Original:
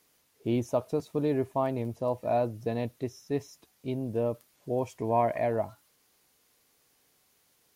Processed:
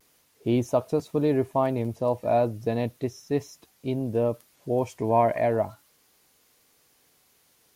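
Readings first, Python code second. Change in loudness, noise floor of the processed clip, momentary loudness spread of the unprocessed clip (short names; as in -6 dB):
+4.5 dB, -64 dBFS, 9 LU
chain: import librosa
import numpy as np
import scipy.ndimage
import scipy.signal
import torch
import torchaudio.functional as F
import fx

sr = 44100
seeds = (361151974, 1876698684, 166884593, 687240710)

y = fx.vibrato(x, sr, rate_hz=0.35, depth_cents=19.0)
y = F.gain(torch.from_numpy(y), 4.5).numpy()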